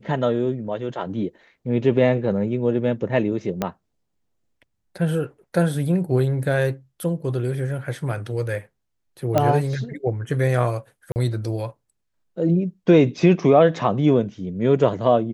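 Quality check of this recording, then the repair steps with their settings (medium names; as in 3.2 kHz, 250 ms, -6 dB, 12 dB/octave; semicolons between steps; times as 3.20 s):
3.62 s: pop -9 dBFS
9.38 s: pop -6 dBFS
11.12–11.16 s: dropout 39 ms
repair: de-click; interpolate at 11.12 s, 39 ms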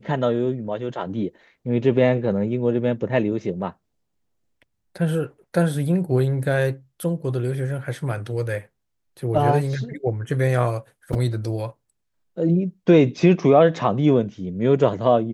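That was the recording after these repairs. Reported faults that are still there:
3.62 s: pop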